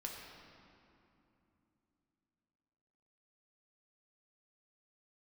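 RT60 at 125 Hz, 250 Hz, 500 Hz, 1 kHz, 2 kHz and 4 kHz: 3.9, 4.1, 3.0, 2.8, 2.3, 1.8 seconds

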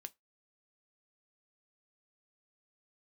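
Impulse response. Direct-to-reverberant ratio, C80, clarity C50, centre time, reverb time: 11.0 dB, 38.5 dB, 29.0 dB, 2 ms, 0.20 s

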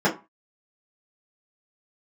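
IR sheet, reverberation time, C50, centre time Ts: 0.30 s, 13.5 dB, 16 ms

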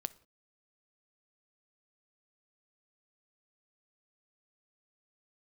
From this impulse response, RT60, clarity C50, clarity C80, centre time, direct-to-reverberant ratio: non-exponential decay, 20.0 dB, 24.0 dB, 2 ms, 14.5 dB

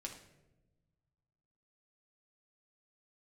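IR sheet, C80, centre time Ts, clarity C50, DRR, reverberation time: 11.0 dB, 22 ms, 7.5 dB, 0.0 dB, non-exponential decay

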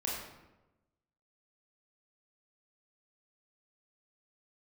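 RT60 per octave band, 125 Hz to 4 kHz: 1.3, 1.2, 1.1, 1.0, 0.85, 0.65 seconds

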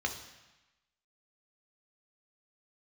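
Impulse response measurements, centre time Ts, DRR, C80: 18 ms, 3.0 dB, 11.5 dB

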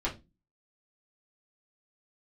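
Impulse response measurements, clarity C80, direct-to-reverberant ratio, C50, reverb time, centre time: 21.5 dB, −6.5 dB, 13.5 dB, 0.25 s, 16 ms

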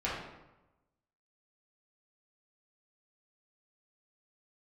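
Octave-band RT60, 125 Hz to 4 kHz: 1.2, 1.1, 1.0, 1.0, 0.85, 0.65 seconds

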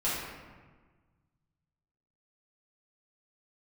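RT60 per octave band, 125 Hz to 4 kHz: 2.4, 1.7, 1.4, 1.4, 1.2, 0.85 seconds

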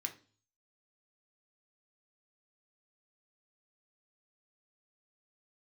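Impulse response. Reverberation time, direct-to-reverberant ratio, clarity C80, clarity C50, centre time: 0.40 s, 3.5 dB, 19.5 dB, 14.0 dB, 10 ms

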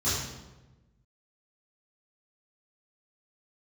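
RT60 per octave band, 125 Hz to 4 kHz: 1.6, 1.4, 1.2, 1.0, 0.85, 0.75 seconds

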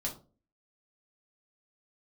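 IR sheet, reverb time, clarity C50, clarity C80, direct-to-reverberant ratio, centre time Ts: 0.35 s, 11.0 dB, 16.5 dB, −2.0 dB, 17 ms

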